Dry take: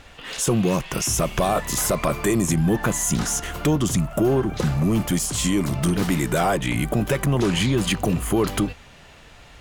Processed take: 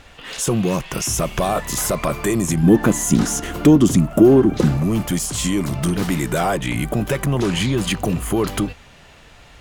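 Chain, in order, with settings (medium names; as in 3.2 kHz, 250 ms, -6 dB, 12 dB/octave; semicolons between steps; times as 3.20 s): 2.63–4.77 s: peaking EQ 280 Hz +11 dB 1.3 oct; trim +1 dB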